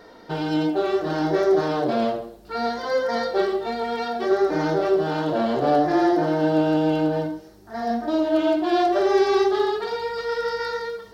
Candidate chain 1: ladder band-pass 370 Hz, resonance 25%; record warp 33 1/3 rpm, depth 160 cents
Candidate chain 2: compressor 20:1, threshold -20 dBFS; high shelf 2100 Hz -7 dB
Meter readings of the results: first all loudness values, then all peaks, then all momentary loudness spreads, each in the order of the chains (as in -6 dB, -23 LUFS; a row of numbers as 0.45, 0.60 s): -33.5, -26.5 LUFS; -20.0, -13.5 dBFS; 11, 5 LU